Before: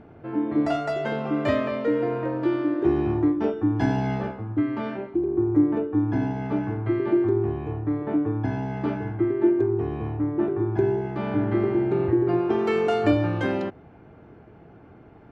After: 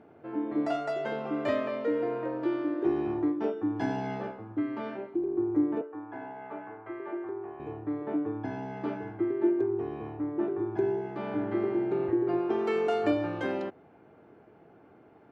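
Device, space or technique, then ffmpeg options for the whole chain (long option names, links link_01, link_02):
filter by subtraction: -filter_complex "[0:a]asplit=2[link_01][link_02];[link_02]lowpass=430,volume=-1[link_03];[link_01][link_03]amix=inputs=2:normalize=0,asettb=1/sr,asplit=3[link_04][link_05][link_06];[link_04]atrim=end=5.814[link_07];[link_05]atrim=start=5.81:end=7.6,asetpts=PTS-STARTPTS,afade=type=in:duration=0.004:curve=qsin,afade=type=out:start_time=1.786:duration=0.004:curve=qsin,acrossover=split=500 2600:gain=0.158 1 0.0708[link_08][link_09][link_10];[link_08][link_09][link_10]amix=inputs=3:normalize=0[link_11];[link_06]atrim=start=7.596[link_12];[link_07][link_11]acrossfade=duration=0.004:curve1=hsin:curve2=qsin[link_13];[link_13][link_12]acrossfade=duration=0.004:curve1=qsin:curve2=hsin,volume=-6.5dB"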